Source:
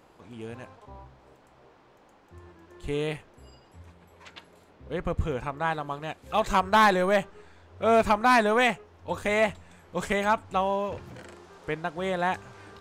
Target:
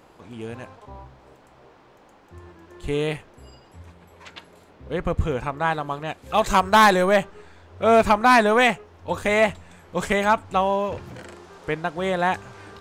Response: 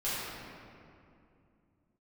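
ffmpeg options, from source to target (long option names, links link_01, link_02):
-filter_complex "[0:a]asettb=1/sr,asplit=3[link_01][link_02][link_03];[link_01]atrim=end=6.034[link_04];[link_02]atrim=start=6.03:end=7.04,asetpts=PTS-STARTPTS,afade=type=in:duration=0.004:curve=qsin,afade=type=out:start_time=1.006:duration=0.004:curve=qsin,adynamicequalizer=threshold=0.0178:dfrequency=4500:dqfactor=0.7:tfrequency=4500:tqfactor=0.7:attack=5:release=100:ratio=0.375:range=2.5:mode=boostabove:tftype=highshelf[link_05];[link_03]atrim=start=7.036[link_06];[link_04][link_05]acrossfade=duration=0.004:curve1=hsin:curve2=qsin[link_07];[link_07][link_06]acrossfade=duration=0.004:curve1=qsin:curve2=hsin,volume=5dB"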